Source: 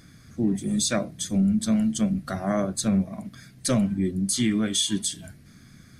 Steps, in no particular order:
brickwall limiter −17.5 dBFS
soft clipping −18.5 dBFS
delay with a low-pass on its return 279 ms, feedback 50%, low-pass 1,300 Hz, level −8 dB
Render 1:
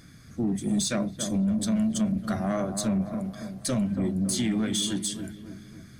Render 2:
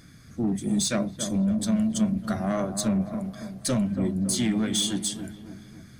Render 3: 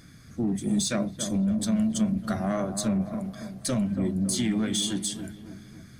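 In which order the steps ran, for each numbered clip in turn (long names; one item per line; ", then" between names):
brickwall limiter, then delay with a low-pass on its return, then soft clipping
soft clipping, then brickwall limiter, then delay with a low-pass on its return
brickwall limiter, then soft clipping, then delay with a low-pass on its return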